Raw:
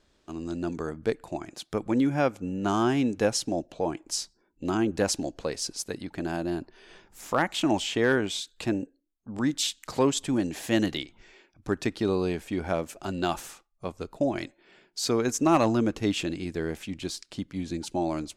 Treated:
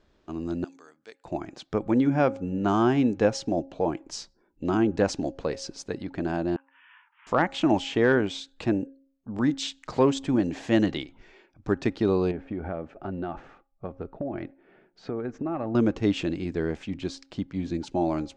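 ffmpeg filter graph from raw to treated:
ffmpeg -i in.wav -filter_complex "[0:a]asettb=1/sr,asplit=3[link_01][link_02][link_03];[link_01]atrim=end=0.644[link_04];[link_02]atrim=start=0.64:end=1.25,asetpts=PTS-STARTPTS,afade=type=in:duration=0.004:curve=qsin,afade=type=out:start_time=0.606:duration=0.004:curve=qsin,highpass=120,aderivative[link_05];[link_03]atrim=start=1.246[link_06];[link_04][link_05]acrossfade=duration=0.004:curve1=hsin:curve2=qsin[link_07];[link_07][link_06]acrossfade=duration=0.004:curve1=qsin:curve2=hsin,asettb=1/sr,asplit=3[link_08][link_09][link_10];[link_08]atrim=end=6.564[link_11];[link_09]atrim=start=6.56:end=7.27,asetpts=PTS-STARTPTS,afade=type=in:duration=0.004:curve=qsin,afade=type=out:start_time=0.706:duration=0.004:curve=qsin,acompressor=threshold=-42dB:ratio=3:attack=3.2:release=140:knee=1:detection=peak,asuperpass=centerf=1700:order=20:qfactor=0.74,asplit=2[link_12][link_13];[link_13]adelay=15,volume=-12dB[link_14];[link_12][link_14]amix=inputs=2:normalize=0,atrim=end_sample=31311[link_15];[link_10]atrim=start=7.266[link_16];[link_11][link_15]acrossfade=duration=0.004:curve1=hsin:curve2=qsin[link_17];[link_17][link_16]acrossfade=duration=0.004:curve1=qsin:curve2=hsin,asettb=1/sr,asplit=3[link_18][link_19][link_20];[link_18]atrim=end=12.314[link_21];[link_19]atrim=start=12.31:end=15.75,asetpts=PTS-STARTPTS,afade=type=in:duration=0.004:curve=qsin,afade=type=out:start_time=3.436:duration=0.004:curve=qsin,lowpass=1700,bandreject=frequency=1000:width=6.7,acompressor=threshold=-31dB:ratio=4:attack=3.2:release=140:knee=1:detection=peak[link_22];[link_20]atrim=start=15.746[link_23];[link_21][link_22]acrossfade=duration=0.004:curve1=hsin:curve2=qsin[link_24];[link_24][link_23]acrossfade=duration=0.004:curve1=qsin:curve2=hsin,lowpass=frequency=7200:width=0.5412,lowpass=frequency=7200:width=1.3066,highshelf=frequency=3000:gain=-11,bandreject=frequency=271.4:width_type=h:width=4,bandreject=frequency=542.8:width_type=h:width=4,bandreject=frequency=814.2:width_type=h:width=4,volume=3dB" out.wav

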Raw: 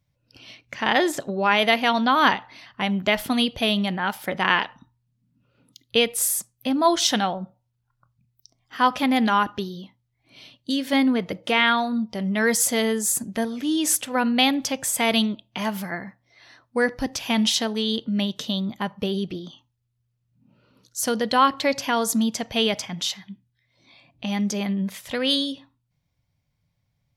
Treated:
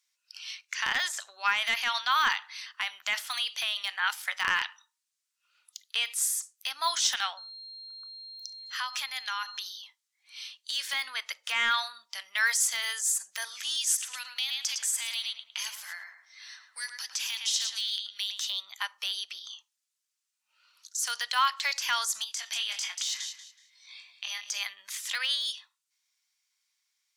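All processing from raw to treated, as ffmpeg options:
ffmpeg -i in.wav -filter_complex "[0:a]asettb=1/sr,asplit=3[link_01][link_02][link_03];[link_01]atrim=end=7.374[link_04];[link_02]atrim=start=7.37:end=9.67,asetpts=PTS-STARTPTS,afade=type=in:duration=0.004:curve=qsin,afade=type=out:start_time=2.296:duration=0.004:curve=qsin,acompressor=threshold=-27dB:ratio=4:attack=3.2:release=140:knee=1:detection=peak,aeval=exprs='val(0)+0.00355*sin(2*PI*4200*n/s)':channel_layout=same[link_05];[link_03]atrim=start=9.666[link_06];[link_04][link_05]acrossfade=duration=0.004:curve1=hsin:curve2=qsin[link_07];[link_07][link_06]acrossfade=duration=0.004:curve1=qsin:curve2=hsin,asettb=1/sr,asplit=3[link_08][link_09][link_10];[link_08]atrim=end=13.774[link_11];[link_09]atrim=start=13.77:end=18.47,asetpts=PTS-STARTPTS,afade=type=in:duration=0.004:curve=qsin,afade=type=out:start_time=4.696:duration=0.004:curve=qsin,acrossover=split=150|3000[link_12][link_13][link_14];[link_13]acompressor=threshold=-37dB:ratio=5:attack=3.2:release=140:knee=2.83:detection=peak[link_15];[link_12][link_15][link_14]amix=inputs=3:normalize=0,asplit=2[link_16][link_17];[link_17]adelay=108,lowpass=frequency=2000:poles=1,volume=-5.5dB,asplit=2[link_18][link_19];[link_19]adelay=108,lowpass=frequency=2000:poles=1,volume=0.38,asplit=2[link_20][link_21];[link_21]adelay=108,lowpass=frequency=2000:poles=1,volume=0.38,asplit=2[link_22][link_23];[link_23]adelay=108,lowpass=frequency=2000:poles=1,volume=0.38,asplit=2[link_24][link_25];[link_25]adelay=108,lowpass=frequency=2000:poles=1,volume=0.38[link_26];[link_16][link_18][link_20][link_22][link_24][link_26]amix=inputs=6:normalize=0,atrim=end_sample=207270[link_27];[link_10]atrim=start=18.466[link_28];[link_11][link_27]acrossfade=duration=0.004:curve1=hsin:curve2=qsin[link_29];[link_29][link_28]acrossfade=duration=0.004:curve1=qsin:curve2=hsin,asettb=1/sr,asplit=3[link_30][link_31][link_32];[link_30]atrim=end=22.244[link_33];[link_31]atrim=start=22.24:end=24.51,asetpts=PTS-STARTPTS,afade=type=in:duration=0.004:curve=qsin,afade=type=out:start_time=2.266:duration=0.004:curve=qsin,asplit=2[link_34][link_35];[link_35]adelay=23,volume=-4.5dB[link_36];[link_34][link_36]amix=inputs=2:normalize=0,atrim=end_sample=100107,acompressor=threshold=-29dB:ratio=5:attack=3.2:release=140:knee=1:detection=peak,aecho=1:1:186|372|558:0.251|0.0578|0.0133,atrim=end_sample=100107[link_37];[link_32]atrim=start=24.506[link_38];[link_33][link_37]acrossfade=duration=0.004:curve1=hsin:curve2=qsin[link_39];[link_39][link_38]acrossfade=duration=0.004:curve1=qsin:curve2=hsin,highpass=frequency=1200:width=0.5412,highpass=frequency=1200:width=1.3066,deesser=0.9,equalizer=frequency=7100:width_type=o:width=1.5:gain=12.5" out.wav

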